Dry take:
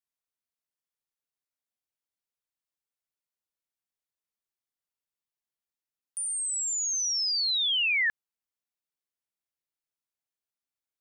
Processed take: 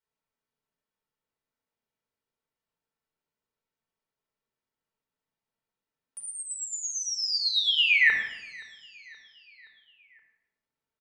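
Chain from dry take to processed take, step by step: low-pass 1.4 kHz 6 dB/octave; bass shelf 68 Hz -8 dB; comb 4.5 ms, depth 40%; feedback delay 523 ms, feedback 56%, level -23.5 dB; reverberation RT60 0.95 s, pre-delay 25 ms, DRR 2.5 dB; trim +6 dB

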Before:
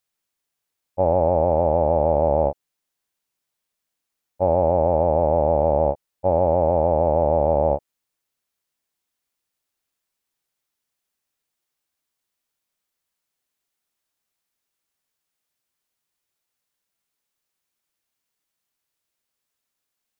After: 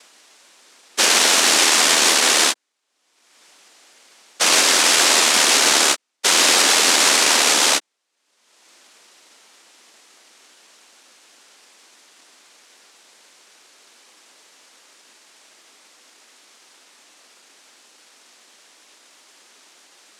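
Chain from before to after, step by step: upward compressor, threshold -36 dBFS; noise-vocoded speech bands 1; high-pass 250 Hz 24 dB/octave; peak limiter -14 dBFS, peak gain reduction 9 dB; trim +9 dB

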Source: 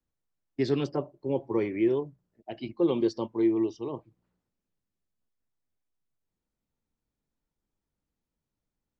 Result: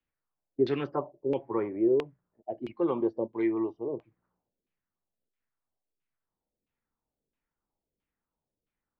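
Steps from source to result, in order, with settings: LFO low-pass saw down 1.5 Hz 380–2900 Hz; bass shelf 400 Hz -6.5 dB

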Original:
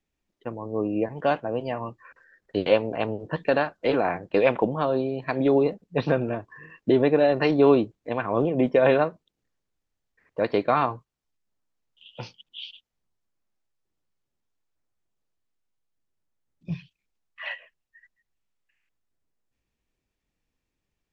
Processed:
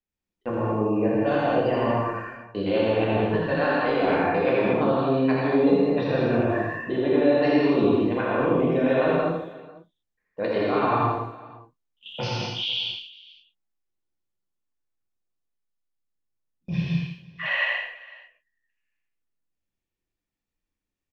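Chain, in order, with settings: gate -51 dBFS, range -21 dB; reverse; compression 6:1, threshold -33 dBFS, peak gain reduction 18.5 dB; reverse; multi-tap echo 83/163/497 ms -4.5/-10/-20 dB; gated-style reverb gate 260 ms flat, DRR -5.5 dB; trim +6.5 dB

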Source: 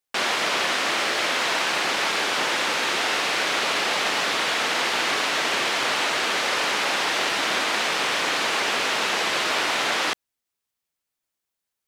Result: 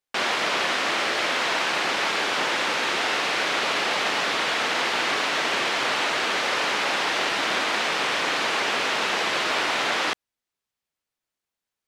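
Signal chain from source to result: treble shelf 7.5 kHz -9 dB

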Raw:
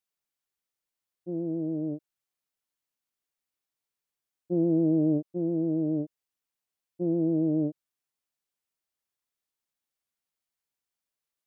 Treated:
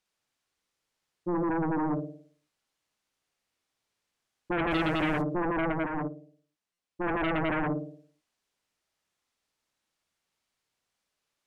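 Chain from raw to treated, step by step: on a send: flutter echo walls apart 9.5 m, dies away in 0.54 s; 4.71–5.22 s: on the sum: word length cut 10-bit, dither triangular; in parallel at -7.5 dB: sine folder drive 19 dB, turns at -12.5 dBFS; on the sum: distance through air 53 m; buffer glitch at 6.73 s, samples 256, times 8; 5.72–7.04 s: upward expansion 2.5:1, over -25 dBFS; trim -7 dB

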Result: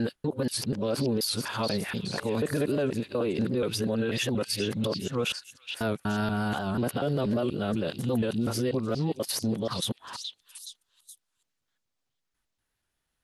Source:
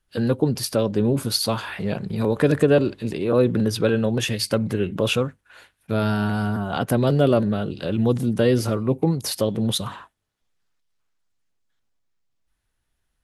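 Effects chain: time reversed locally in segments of 242 ms; bass shelf 95 Hz -10.5 dB; peak limiter -17.5 dBFS, peak gain reduction 10 dB; on a send: repeats whose band climbs or falls 422 ms, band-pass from 3.5 kHz, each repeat 0.7 oct, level -4.5 dB; on the sum: warped record 78 rpm, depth 100 cents; trim -2 dB

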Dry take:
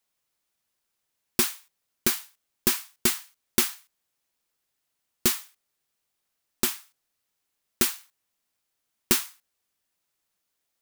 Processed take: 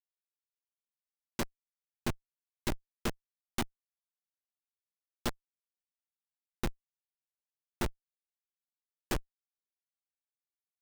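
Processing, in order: bass shelf 190 Hz +4.5 dB; Schmitt trigger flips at -15.5 dBFS; trim +3 dB

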